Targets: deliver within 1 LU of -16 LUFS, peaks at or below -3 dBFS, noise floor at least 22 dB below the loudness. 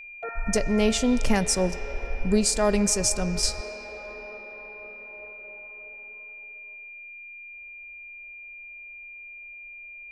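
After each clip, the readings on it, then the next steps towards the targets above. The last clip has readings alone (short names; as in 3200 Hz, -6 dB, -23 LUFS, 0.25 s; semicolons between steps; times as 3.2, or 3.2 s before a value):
steady tone 2400 Hz; tone level -40 dBFS; loudness -25.0 LUFS; peak -9.0 dBFS; loudness target -16.0 LUFS
-> notch 2400 Hz, Q 30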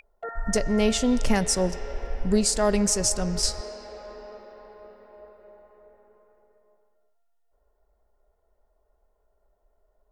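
steady tone none; loudness -24.5 LUFS; peak -9.0 dBFS; loudness target -16.0 LUFS
-> gain +8.5 dB; limiter -3 dBFS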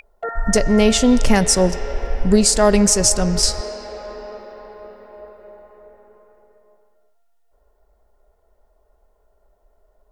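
loudness -16.5 LUFS; peak -3.0 dBFS; noise floor -62 dBFS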